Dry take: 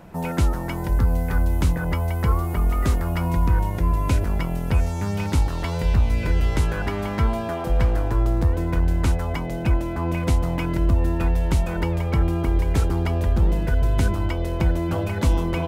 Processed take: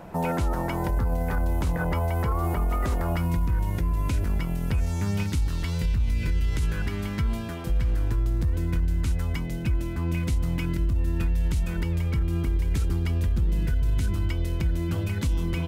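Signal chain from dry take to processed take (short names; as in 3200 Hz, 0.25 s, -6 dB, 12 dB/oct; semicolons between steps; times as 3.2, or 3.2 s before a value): bell 720 Hz +5 dB 1.8 oct, from 3.17 s -7 dB, from 5.23 s -14.5 dB; limiter -17.5 dBFS, peak gain reduction 9 dB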